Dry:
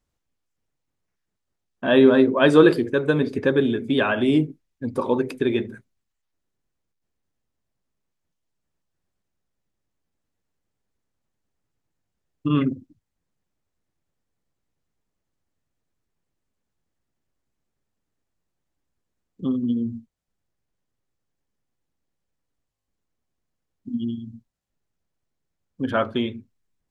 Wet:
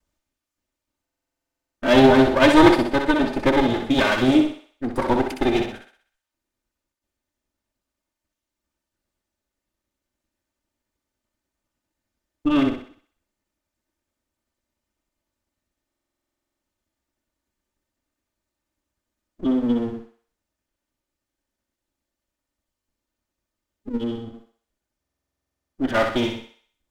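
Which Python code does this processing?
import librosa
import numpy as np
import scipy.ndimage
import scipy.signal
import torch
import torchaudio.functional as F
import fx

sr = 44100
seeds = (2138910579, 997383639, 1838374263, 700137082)

y = fx.lower_of_two(x, sr, delay_ms=3.3)
y = fx.vibrato(y, sr, rate_hz=6.0, depth_cents=7.0)
y = fx.echo_thinned(y, sr, ms=63, feedback_pct=48, hz=460.0, wet_db=-5)
y = fx.buffer_glitch(y, sr, at_s=(1.02, 15.87, 25.0), block=2048, repeats=15)
y = y * librosa.db_to_amplitude(2.5)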